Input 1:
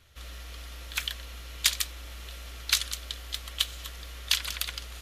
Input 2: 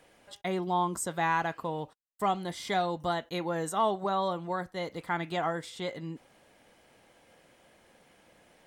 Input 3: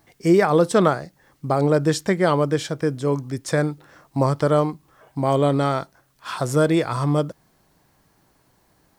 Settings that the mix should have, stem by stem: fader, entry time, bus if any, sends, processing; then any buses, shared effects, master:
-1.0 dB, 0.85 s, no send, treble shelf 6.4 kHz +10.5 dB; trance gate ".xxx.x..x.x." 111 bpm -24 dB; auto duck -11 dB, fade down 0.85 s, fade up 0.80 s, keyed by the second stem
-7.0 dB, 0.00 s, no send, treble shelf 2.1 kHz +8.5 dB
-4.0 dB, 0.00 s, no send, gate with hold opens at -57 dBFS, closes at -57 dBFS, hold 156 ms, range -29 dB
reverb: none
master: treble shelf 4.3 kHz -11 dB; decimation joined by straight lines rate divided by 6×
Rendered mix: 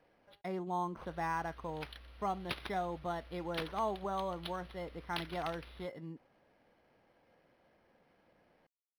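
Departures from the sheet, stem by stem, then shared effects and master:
stem 1: missing trance gate ".xxx.x..x.x." 111 bpm -24 dB; stem 2: missing treble shelf 2.1 kHz +8.5 dB; stem 3: muted

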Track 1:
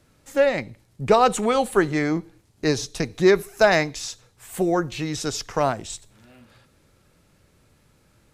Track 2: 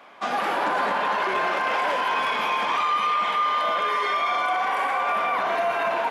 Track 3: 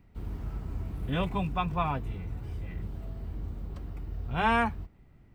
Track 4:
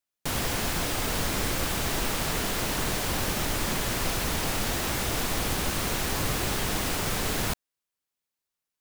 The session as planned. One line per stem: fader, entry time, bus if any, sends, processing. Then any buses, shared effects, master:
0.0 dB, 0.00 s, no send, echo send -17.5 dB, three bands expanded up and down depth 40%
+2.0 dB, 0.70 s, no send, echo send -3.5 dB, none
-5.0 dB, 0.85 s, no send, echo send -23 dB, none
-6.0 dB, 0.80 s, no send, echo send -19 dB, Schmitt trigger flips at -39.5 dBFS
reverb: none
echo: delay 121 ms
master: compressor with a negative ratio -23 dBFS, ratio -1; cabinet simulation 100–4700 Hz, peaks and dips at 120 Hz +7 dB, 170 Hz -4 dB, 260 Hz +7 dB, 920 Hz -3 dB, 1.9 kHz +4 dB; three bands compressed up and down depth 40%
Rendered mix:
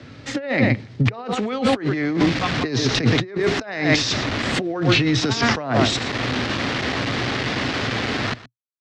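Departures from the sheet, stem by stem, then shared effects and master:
stem 1 0.0 dB -> +12.0 dB; stem 2: muted

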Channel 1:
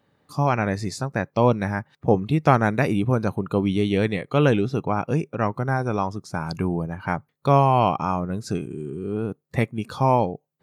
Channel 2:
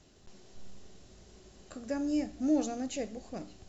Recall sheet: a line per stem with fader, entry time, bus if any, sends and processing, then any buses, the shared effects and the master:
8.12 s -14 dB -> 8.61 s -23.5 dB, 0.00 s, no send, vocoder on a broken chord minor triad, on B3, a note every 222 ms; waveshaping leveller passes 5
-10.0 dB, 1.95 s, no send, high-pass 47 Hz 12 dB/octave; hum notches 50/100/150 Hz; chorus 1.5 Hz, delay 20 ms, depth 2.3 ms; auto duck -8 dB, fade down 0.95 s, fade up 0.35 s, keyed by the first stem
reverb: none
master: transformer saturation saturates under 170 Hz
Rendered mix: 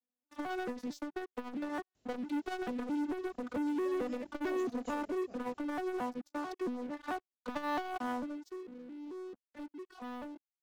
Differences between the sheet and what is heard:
stem 1 -14.0 dB -> -23.5 dB; stem 2 -10.0 dB -> -4.0 dB

